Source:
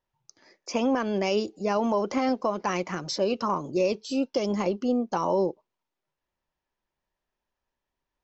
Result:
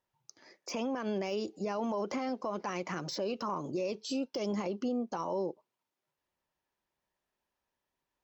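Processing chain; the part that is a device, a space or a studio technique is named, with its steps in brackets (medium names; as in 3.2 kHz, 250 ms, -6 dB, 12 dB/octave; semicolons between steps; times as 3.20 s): podcast mastering chain (high-pass 100 Hz 6 dB/octave; de-esser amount 85%; compression 2:1, threshold -30 dBFS, peak gain reduction 6 dB; peak limiter -25.5 dBFS, peak gain reduction 8 dB; MP3 112 kbps 48 kHz)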